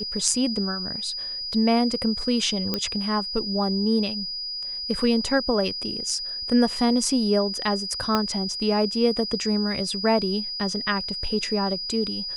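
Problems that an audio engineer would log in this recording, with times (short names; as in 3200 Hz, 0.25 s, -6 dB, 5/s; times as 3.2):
tone 4900 Hz -29 dBFS
2.74 pop -10 dBFS
8.15 pop -8 dBFS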